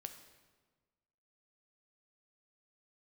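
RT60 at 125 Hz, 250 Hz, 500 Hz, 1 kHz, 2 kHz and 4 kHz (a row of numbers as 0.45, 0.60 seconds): 1.6, 1.6, 1.5, 1.4, 1.2, 1.0 seconds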